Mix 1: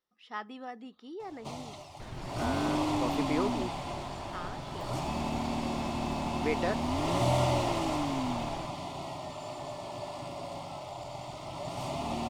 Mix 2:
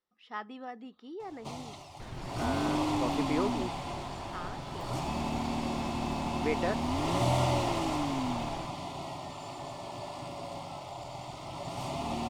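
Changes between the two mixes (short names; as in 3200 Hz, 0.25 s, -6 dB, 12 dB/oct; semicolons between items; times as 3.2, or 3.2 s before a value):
speech: add high shelf 5100 Hz -7 dB; first sound: add notch 610 Hz, Q 15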